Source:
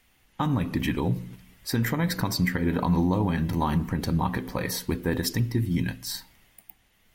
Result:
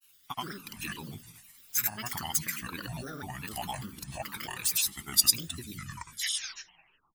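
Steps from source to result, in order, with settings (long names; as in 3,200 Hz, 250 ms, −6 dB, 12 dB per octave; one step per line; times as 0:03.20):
turntable brake at the end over 1.67 s
first-order pre-emphasis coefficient 0.97
comb filter 0.8 ms, depth 98%
granular cloud, pitch spread up and down by 7 semitones
level +6 dB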